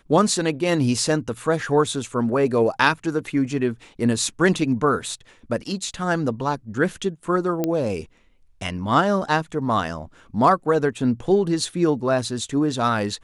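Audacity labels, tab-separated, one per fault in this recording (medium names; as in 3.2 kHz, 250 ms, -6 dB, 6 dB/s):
7.640000	7.640000	pop -10 dBFS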